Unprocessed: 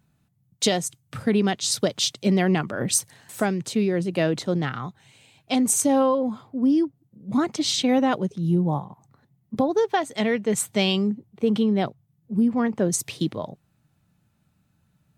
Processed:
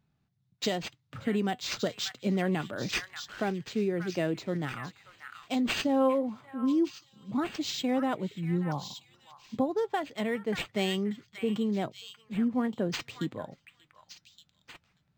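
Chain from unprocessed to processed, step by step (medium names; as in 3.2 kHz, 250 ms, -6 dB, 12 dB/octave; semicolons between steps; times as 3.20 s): flange 0.27 Hz, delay 2.3 ms, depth 2 ms, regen +81%; on a send: repeats whose band climbs or falls 585 ms, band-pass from 1.7 kHz, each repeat 1.4 oct, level -4 dB; on the sum: decimation joined by straight lines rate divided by 4×; trim -3 dB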